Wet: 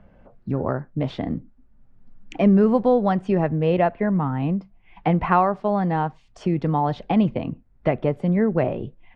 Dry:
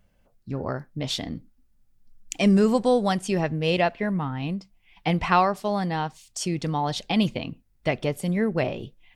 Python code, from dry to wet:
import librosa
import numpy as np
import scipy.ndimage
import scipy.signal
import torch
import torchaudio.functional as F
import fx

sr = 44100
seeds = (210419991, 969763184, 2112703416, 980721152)

y = scipy.signal.sosfilt(scipy.signal.butter(2, 1400.0, 'lowpass', fs=sr, output='sos'), x)
y = fx.band_squash(y, sr, depth_pct=40)
y = y * librosa.db_to_amplitude(4.0)